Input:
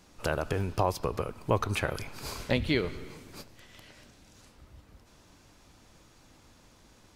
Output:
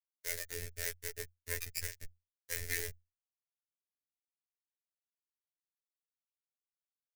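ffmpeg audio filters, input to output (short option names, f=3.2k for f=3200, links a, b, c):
-filter_complex "[0:a]afftfilt=real='re*gte(hypot(re,im),0.126)':imag='im*gte(hypot(re,im),0.126)':win_size=1024:overlap=0.75,lowshelf=f=69:g=3.5,aeval=exprs='(tanh(25.1*val(0)+0.7)-tanh(0.7))/25.1':c=same,aeval=exprs='val(0)+0.00316*(sin(2*PI*50*n/s)+sin(2*PI*2*50*n/s)/2+sin(2*PI*3*50*n/s)/3+sin(2*PI*4*50*n/s)/4+sin(2*PI*5*50*n/s)/5)':c=same,acrossover=split=590[a][b];[a]aeval=exprs='val(0)*(1-0.5/2+0.5/2*cos(2*PI*4.9*n/s))':c=same[c];[b]aeval=exprs='val(0)*(1-0.5/2-0.5/2*cos(2*PI*4.9*n/s))':c=same[d];[c][d]amix=inputs=2:normalize=0,acrusher=bits=4:dc=4:mix=0:aa=0.000001,aecho=1:1:6.5:0.58,afreqshift=-42,afftfilt=real='hypot(re,im)*cos(PI*b)':imag='0':win_size=2048:overlap=0.75,firequalizer=gain_entry='entry(130,0);entry(200,-22);entry(420,-2);entry(790,-20);entry(1200,-20);entry(1800,6);entry(3100,-4);entry(5300,7);entry(12000,12)':delay=0.05:min_phase=1,volume=7.5dB"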